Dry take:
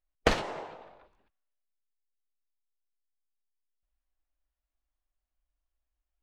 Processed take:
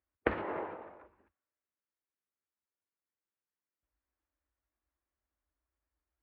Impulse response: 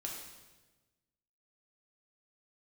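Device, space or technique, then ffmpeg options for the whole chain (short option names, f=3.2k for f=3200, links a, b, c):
bass amplifier: -af "acompressor=threshold=-31dB:ratio=4,highpass=f=61:w=0.5412,highpass=f=61:w=1.3066,equalizer=f=79:t=q:w=4:g=4,equalizer=f=140:t=q:w=4:g=-8,equalizer=f=330:t=q:w=4:g=5,equalizer=f=720:t=q:w=4:g=-5,lowpass=f=2.1k:w=0.5412,lowpass=f=2.1k:w=1.3066,volume=3.5dB"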